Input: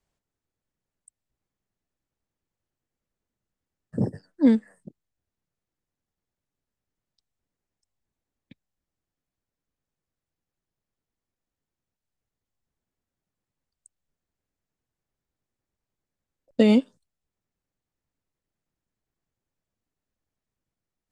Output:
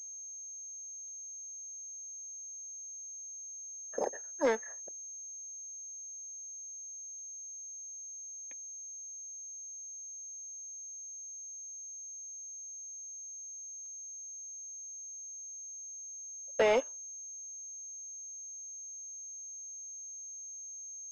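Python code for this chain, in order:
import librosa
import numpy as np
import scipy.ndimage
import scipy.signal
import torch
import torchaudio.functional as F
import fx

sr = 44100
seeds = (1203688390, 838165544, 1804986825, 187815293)

y = scipy.signal.sosfilt(scipy.signal.butter(4, 600.0, 'highpass', fs=sr, output='sos'), x)
y = fx.leveller(y, sr, passes=1)
y = np.clip(10.0 ** (26.5 / 20.0) * y, -1.0, 1.0) / 10.0 ** (26.5 / 20.0)
y = fx.air_absorb(y, sr, metres=350.0)
y = fx.pwm(y, sr, carrier_hz=6400.0)
y = y * 10.0 ** (6.0 / 20.0)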